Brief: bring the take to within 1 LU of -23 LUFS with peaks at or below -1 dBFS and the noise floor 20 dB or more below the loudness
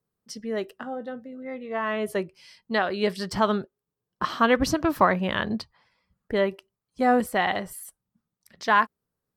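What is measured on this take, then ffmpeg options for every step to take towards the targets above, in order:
loudness -25.5 LUFS; peak level -7.0 dBFS; loudness target -23.0 LUFS
-> -af "volume=1.33"

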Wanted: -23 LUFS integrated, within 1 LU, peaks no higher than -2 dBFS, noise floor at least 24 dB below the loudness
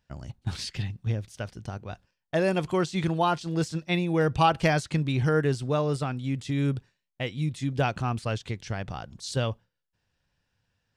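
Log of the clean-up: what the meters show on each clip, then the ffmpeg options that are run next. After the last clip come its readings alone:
loudness -28.0 LUFS; peak level -9.0 dBFS; loudness target -23.0 LUFS
-> -af "volume=1.78"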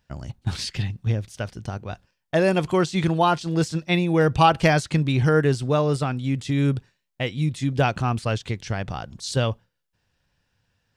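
loudness -23.0 LUFS; peak level -4.0 dBFS; noise floor -77 dBFS

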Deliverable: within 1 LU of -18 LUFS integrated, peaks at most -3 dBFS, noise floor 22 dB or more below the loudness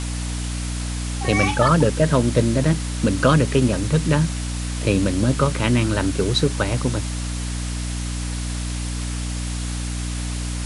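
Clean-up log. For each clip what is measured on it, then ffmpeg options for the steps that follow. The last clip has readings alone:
hum 60 Hz; highest harmonic 300 Hz; hum level -24 dBFS; noise floor -26 dBFS; noise floor target -44 dBFS; loudness -21.5 LUFS; peak level -3.0 dBFS; loudness target -18.0 LUFS
-> -af "bandreject=f=60:t=h:w=6,bandreject=f=120:t=h:w=6,bandreject=f=180:t=h:w=6,bandreject=f=240:t=h:w=6,bandreject=f=300:t=h:w=6"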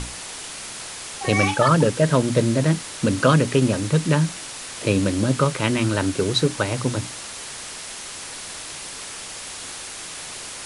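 hum not found; noise floor -35 dBFS; noise floor target -45 dBFS
-> -af "afftdn=nr=10:nf=-35"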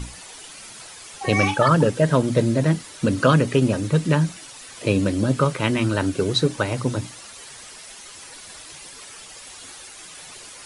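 noise floor -42 dBFS; noise floor target -43 dBFS
-> -af "afftdn=nr=6:nf=-42"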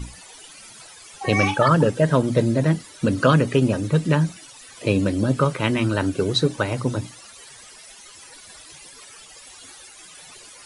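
noise floor -45 dBFS; loudness -21.0 LUFS; peak level -4.0 dBFS; loudness target -18.0 LUFS
-> -af "volume=1.41,alimiter=limit=0.708:level=0:latency=1"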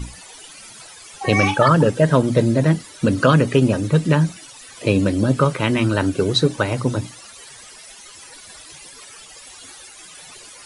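loudness -18.0 LUFS; peak level -3.0 dBFS; noise floor -42 dBFS

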